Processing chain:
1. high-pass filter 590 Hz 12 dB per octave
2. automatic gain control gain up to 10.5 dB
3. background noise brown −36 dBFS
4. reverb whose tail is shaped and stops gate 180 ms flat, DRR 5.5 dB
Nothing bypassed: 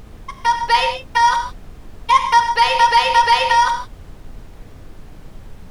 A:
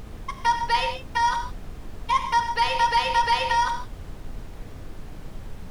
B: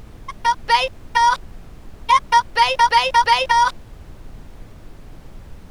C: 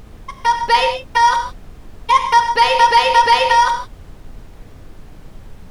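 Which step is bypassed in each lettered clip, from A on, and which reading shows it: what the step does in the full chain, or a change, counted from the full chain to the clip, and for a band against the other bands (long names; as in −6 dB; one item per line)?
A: 2, change in momentary loudness spread +12 LU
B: 4, change in momentary loudness spread −2 LU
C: 1, 500 Hz band +4.5 dB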